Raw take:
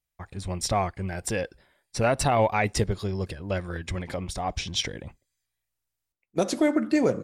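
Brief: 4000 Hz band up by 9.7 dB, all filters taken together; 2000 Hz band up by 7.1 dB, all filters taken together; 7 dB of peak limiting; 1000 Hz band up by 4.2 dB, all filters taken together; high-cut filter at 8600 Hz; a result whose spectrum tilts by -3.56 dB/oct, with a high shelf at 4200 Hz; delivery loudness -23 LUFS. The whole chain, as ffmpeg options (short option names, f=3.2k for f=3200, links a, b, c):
-af "lowpass=8.6k,equalizer=f=1k:t=o:g=4.5,equalizer=f=2k:t=o:g=4,equalizer=f=4k:t=o:g=7,highshelf=f=4.2k:g=7.5,volume=2.5dB,alimiter=limit=-9dB:level=0:latency=1"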